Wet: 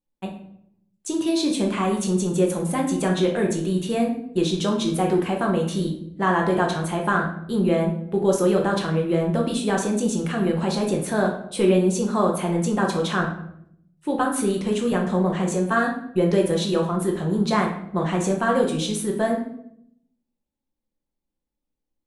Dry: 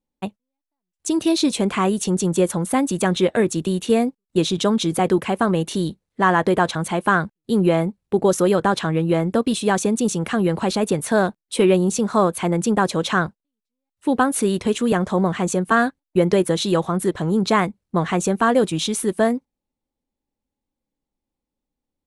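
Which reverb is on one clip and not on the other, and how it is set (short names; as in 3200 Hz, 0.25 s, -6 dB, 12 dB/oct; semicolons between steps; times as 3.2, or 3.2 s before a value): shoebox room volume 140 m³, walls mixed, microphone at 0.9 m; gain -6.5 dB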